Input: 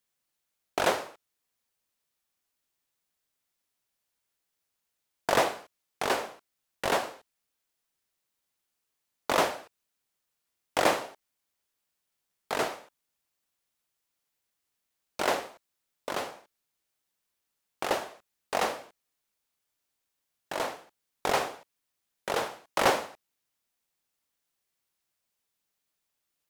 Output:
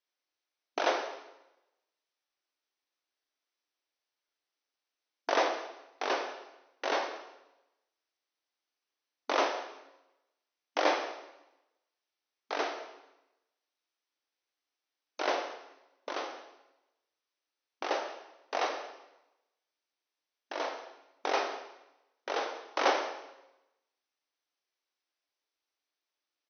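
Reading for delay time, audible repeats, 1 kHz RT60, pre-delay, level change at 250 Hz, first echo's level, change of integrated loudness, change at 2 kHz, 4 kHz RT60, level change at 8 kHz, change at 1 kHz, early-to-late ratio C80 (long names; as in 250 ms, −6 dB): 188 ms, 1, 0.95 s, 7 ms, −4.0 dB, −21.0 dB, −3.5 dB, −3.0 dB, 0.90 s, −8.5 dB, −2.5 dB, 9.5 dB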